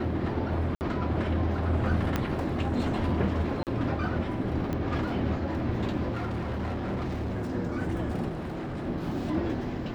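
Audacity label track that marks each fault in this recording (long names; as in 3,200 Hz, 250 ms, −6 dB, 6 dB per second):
0.750000	0.810000	drop-out 59 ms
2.160000	2.160000	click −13 dBFS
3.630000	3.670000	drop-out 38 ms
4.730000	4.730000	click −19 dBFS
6.110000	7.520000	clipping −28 dBFS
8.280000	8.860000	clipping −31 dBFS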